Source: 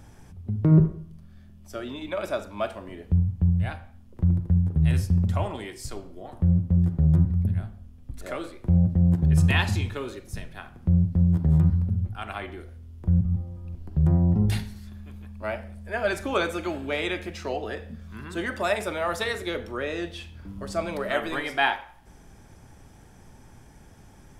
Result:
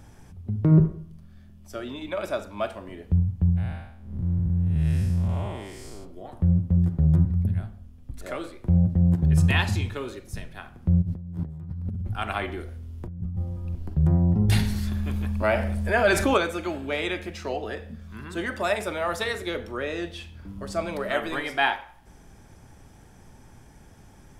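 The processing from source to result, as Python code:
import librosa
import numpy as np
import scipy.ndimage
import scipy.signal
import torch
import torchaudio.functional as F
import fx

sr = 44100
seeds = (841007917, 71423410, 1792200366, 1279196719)

y = fx.spec_blur(x, sr, span_ms=249.0, at=(3.56, 6.04), fade=0.02)
y = fx.over_compress(y, sr, threshold_db=-30.0, ratio=-1.0, at=(11.01, 13.93), fade=0.02)
y = fx.env_flatten(y, sr, amount_pct=50, at=(14.48, 16.36), fade=0.02)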